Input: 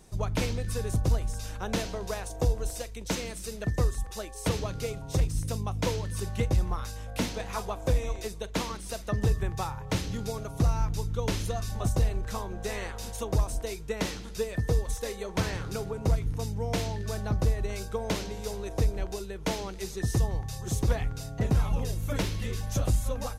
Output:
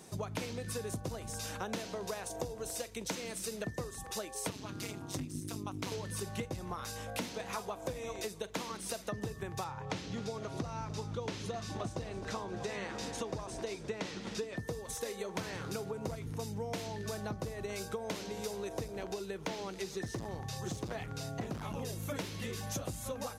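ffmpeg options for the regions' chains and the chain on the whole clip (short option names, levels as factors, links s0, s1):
-filter_complex "[0:a]asettb=1/sr,asplit=3[s0][s1][s2];[s0]atrim=end=4.504[s3];[s1]atrim=start=4.5:end=5.92,asetpts=PTS-STARTPTS,afade=t=in:d=0.004:c=qsin,afade=t=out:st=1.416:d=0.004:c=qsin,equalizer=f=480:t=o:w=0.78:g=-12.5,tremolo=f=200:d=0.947[s4];[s2]atrim=start=5.916[s5];[s3][s4]acrossfade=d=0.004:c1=hsin:c2=qsin[s6];[s6][s5]acrossfade=d=0.004:c1=qsin:c2=hsin,asettb=1/sr,asplit=3[s7][s8][s9];[s7]atrim=end=9.644[s10];[s8]atrim=start=9.64:end=14.58,asetpts=PTS-STARTPTS,afade=t=in:d=0.004:c=qsin,afade=t=out:st=4.936:d=0.004:c=qsin,lowpass=6100,asplit=8[s11][s12][s13][s14][s15][s16][s17][s18];[s12]adelay=259,afreqshift=-84,volume=0.168[s19];[s13]adelay=518,afreqshift=-168,volume=0.106[s20];[s14]adelay=777,afreqshift=-252,volume=0.0668[s21];[s15]adelay=1036,afreqshift=-336,volume=0.0422[s22];[s16]adelay=1295,afreqshift=-420,volume=0.0263[s23];[s17]adelay=1554,afreqshift=-504,volume=0.0166[s24];[s18]adelay=1813,afreqshift=-588,volume=0.0105[s25];[s11][s19][s20][s21][s22][s23][s24][s25]amix=inputs=8:normalize=0,atrim=end_sample=217854[s26];[s9]atrim=start=14.576[s27];[s10][s26]acrossfade=d=0.004:c1=hsin:c2=qsin[s28];[s28][s27]acrossfade=d=0.004:c1=qsin:c2=hsin,asettb=1/sr,asplit=3[s29][s30][s31];[s29]atrim=end=18.884[s32];[s30]atrim=start=18.88:end=21.75,asetpts=PTS-STARTPTS,afade=t=in:d=0.004:c=qsin,afade=t=out:st=2.866:d=0.004:c=qsin,acrossover=split=6000[s33][s34];[s34]acompressor=threshold=0.00224:ratio=4:attack=1:release=60[s35];[s33][s35]amix=inputs=2:normalize=0,asoftclip=type=hard:threshold=0.0596[s36];[s31]atrim=start=21.746[s37];[s32][s36]acrossfade=d=0.004:c1=hsin:c2=qsin[s38];[s38][s37]acrossfade=d=0.004:c1=qsin:c2=hsin,highpass=150,acompressor=threshold=0.01:ratio=6,volume=1.58"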